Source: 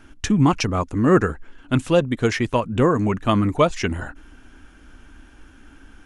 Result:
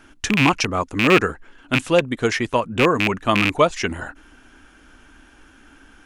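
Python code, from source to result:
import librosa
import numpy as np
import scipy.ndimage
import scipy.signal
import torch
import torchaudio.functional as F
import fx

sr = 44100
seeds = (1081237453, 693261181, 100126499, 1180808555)

y = fx.rattle_buzz(x, sr, strikes_db=-20.0, level_db=-8.0)
y = fx.low_shelf(y, sr, hz=230.0, db=-9.5)
y = F.gain(torch.from_numpy(y), 2.5).numpy()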